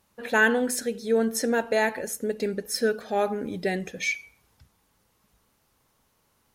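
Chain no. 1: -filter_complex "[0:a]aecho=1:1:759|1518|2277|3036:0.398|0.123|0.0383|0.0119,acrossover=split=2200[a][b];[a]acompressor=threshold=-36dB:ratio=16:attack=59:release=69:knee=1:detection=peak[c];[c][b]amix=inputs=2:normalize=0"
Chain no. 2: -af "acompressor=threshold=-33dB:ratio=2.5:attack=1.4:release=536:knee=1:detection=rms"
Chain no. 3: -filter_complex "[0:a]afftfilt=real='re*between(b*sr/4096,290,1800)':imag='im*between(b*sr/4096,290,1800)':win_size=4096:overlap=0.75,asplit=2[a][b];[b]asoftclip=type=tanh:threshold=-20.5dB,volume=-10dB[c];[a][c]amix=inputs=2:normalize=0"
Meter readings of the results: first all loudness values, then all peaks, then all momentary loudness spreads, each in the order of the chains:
-31.5, -36.0, -25.5 LUFS; -14.0, -22.5, -9.5 dBFS; 17, 5, 11 LU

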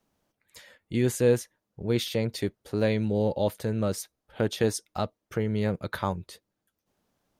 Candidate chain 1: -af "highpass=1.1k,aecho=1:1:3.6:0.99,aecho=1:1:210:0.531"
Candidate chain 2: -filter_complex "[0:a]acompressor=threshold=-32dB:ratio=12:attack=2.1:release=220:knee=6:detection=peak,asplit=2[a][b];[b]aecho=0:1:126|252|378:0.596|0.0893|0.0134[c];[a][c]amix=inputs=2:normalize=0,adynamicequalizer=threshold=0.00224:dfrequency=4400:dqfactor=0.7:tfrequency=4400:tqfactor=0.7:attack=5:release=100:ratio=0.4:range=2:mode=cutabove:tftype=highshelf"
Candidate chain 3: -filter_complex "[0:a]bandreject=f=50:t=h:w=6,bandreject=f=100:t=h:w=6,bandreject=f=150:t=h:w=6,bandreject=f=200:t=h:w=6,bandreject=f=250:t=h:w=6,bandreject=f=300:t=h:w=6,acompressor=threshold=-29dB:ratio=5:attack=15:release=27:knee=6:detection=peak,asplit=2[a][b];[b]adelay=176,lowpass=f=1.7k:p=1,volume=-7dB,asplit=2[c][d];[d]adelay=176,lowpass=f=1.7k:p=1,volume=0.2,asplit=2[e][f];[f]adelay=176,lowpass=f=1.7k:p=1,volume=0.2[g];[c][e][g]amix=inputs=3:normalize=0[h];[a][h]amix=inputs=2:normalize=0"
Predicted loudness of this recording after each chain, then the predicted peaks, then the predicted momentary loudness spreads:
-34.0, -39.0, -32.0 LUFS; -15.5, -24.5, -14.5 dBFS; 14, 10, 10 LU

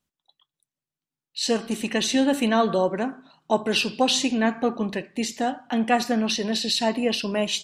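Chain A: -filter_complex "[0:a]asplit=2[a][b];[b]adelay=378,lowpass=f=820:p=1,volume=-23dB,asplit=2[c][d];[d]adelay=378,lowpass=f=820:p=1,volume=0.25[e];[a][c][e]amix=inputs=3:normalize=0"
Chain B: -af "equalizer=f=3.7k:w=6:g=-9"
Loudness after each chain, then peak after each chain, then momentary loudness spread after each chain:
-24.0, -24.5 LUFS; -6.5, -7.0 dBFS; 8, 8 LU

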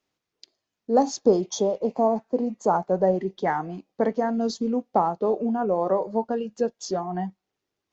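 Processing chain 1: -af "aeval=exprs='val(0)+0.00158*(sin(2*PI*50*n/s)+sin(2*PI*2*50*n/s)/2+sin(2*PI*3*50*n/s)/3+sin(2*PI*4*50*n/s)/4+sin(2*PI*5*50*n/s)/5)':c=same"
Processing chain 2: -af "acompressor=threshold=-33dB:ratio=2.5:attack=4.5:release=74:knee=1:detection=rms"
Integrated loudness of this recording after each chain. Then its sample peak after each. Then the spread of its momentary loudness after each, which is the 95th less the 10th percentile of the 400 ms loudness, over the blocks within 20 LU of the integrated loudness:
-25.0, -34.5 LUFS; -7.5, -20.0 dBFS; 8, 5 LU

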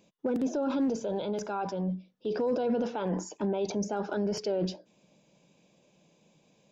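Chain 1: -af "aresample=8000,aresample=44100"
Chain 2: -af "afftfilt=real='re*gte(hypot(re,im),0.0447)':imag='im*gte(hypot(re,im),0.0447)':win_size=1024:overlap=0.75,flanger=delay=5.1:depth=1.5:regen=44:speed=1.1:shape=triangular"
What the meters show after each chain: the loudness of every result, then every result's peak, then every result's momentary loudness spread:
-31.5, -35.5 LUFS; -21.0, -22.0 dBFS; 5, 6 LU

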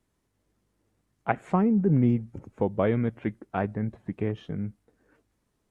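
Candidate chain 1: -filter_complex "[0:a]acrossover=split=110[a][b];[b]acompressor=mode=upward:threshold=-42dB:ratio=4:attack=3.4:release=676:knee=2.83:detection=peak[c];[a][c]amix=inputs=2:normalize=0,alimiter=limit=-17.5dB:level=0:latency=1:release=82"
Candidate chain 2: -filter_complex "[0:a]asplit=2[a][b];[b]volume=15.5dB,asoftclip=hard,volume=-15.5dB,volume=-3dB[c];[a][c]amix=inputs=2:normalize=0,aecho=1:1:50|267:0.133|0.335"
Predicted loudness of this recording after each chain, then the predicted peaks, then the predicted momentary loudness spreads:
-30.0, -22.5 LUFS; -17.5, -5.5 dBFS; 13, 12 LU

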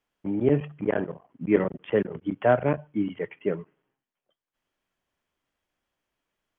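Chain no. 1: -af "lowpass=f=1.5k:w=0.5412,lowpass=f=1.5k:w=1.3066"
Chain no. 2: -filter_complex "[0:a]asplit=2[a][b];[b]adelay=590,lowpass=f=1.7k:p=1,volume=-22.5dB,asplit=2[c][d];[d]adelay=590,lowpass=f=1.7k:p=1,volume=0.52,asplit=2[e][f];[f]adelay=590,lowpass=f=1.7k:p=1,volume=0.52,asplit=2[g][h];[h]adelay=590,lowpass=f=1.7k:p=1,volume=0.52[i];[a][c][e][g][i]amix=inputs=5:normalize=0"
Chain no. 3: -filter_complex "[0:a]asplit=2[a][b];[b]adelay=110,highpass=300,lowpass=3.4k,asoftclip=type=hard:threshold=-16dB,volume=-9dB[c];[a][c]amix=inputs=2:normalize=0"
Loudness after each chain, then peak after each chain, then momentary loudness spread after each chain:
-27.0, -27.0, -26.5 LUFS; -8.0, -7.5, -7.0 dBFS; 9, 9, 10 LU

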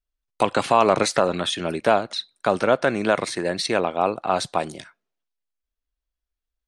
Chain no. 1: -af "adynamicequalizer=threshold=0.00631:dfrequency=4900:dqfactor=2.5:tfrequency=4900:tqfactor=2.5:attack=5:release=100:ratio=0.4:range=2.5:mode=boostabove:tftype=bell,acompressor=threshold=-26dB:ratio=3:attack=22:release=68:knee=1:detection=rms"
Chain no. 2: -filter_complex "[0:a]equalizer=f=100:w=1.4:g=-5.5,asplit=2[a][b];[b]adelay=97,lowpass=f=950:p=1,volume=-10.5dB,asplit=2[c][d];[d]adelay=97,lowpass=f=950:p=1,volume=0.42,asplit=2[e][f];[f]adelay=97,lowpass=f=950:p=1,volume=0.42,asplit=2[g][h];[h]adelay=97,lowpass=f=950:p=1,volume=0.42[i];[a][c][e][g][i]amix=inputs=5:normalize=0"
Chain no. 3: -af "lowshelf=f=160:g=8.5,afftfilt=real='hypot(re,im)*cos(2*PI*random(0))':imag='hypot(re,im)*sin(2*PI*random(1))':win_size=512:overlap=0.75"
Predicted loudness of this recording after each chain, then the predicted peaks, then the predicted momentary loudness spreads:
-27.5, -22.0, -27.5 LUFS; -8.5, -4.0, -9.5 dBFS; 5, 8, 8 LU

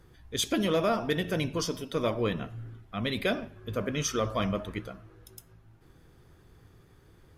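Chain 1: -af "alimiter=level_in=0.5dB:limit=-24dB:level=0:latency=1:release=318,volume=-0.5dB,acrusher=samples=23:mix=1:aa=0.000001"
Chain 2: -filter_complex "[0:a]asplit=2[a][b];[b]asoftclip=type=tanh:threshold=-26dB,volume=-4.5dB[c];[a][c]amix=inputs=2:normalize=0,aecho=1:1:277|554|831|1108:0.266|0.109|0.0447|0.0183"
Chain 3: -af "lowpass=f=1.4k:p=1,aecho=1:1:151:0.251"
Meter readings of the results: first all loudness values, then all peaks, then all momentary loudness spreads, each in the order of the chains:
-36.5, -27.5, -32.0 LUFS; -24.5, -14.5, -17.0 dBFS; 13, 14, 12 LU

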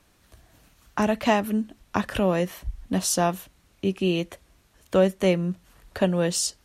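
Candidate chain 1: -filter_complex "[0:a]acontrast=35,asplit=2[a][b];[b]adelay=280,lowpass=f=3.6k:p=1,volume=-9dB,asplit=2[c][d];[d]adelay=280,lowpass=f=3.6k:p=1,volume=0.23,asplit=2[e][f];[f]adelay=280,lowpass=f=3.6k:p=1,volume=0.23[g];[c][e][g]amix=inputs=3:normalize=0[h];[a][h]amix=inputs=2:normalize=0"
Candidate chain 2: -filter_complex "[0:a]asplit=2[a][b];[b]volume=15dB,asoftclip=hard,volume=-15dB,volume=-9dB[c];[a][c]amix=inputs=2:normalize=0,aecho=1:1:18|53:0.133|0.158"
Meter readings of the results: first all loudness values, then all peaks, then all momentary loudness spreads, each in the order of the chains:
-20.0, -22.5 LUFS; -3.5, -5.5 dBFS; 10, 12 LU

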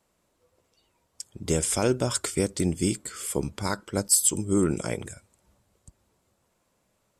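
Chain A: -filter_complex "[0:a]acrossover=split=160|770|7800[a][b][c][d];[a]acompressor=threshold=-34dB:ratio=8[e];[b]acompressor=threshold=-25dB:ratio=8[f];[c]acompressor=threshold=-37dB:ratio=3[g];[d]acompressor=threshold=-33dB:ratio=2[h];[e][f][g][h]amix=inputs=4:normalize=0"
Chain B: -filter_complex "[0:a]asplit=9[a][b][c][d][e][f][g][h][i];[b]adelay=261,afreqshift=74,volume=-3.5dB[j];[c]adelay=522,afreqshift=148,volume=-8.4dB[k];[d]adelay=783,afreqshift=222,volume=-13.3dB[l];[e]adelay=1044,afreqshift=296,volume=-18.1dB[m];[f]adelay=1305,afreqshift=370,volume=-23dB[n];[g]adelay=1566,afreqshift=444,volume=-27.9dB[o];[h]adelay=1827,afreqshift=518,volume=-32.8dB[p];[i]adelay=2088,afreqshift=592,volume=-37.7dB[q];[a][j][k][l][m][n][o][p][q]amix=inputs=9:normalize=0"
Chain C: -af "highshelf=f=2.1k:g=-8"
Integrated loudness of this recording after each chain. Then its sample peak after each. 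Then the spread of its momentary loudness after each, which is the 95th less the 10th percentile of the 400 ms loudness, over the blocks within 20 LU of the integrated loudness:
-30.0, -24.0, -28.5 LUFS; -13.5, -7.0, -12.0 dBFS; 11, 19, 11 LU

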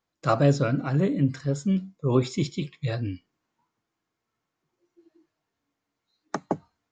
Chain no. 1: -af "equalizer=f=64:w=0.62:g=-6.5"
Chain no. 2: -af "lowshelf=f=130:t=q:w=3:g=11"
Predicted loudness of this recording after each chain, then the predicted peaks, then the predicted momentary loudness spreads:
-28.0, -24.0 LUFS; -8.5, -7.0 dBFS; 12, 14 LU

